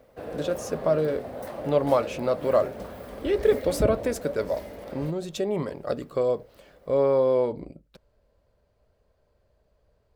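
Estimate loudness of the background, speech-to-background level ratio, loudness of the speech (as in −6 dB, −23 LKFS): −35.5 LKFS, 9.0 dB, −26.5 LKFS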